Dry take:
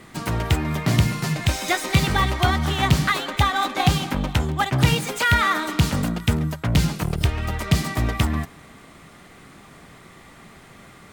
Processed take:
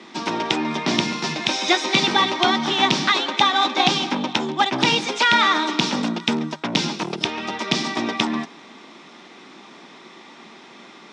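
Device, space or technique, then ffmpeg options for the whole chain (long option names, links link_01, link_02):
television speaker: -af "highpass=frequency=210:width=0.5412,highpass=frequency=210:width=1.3066,equalizer=frequency=230:width_type=q:width=4:gain=5,equalizer=frequency=350:width_type=q:width=4:gain=7,equalizer=frequency=910:width_type=q:width=4:gain=8,equalizer=frequency=2500:width_type=q:width=4:gain=5,equalizer=frequency=3600:width_type=q:width=4:gain=9,equalizer=frequency=5500:width_type=q:width=4:gain=9,lowpass=frequency=6500:width=0.5412,lowpass=frequency=6500:width=1.3066"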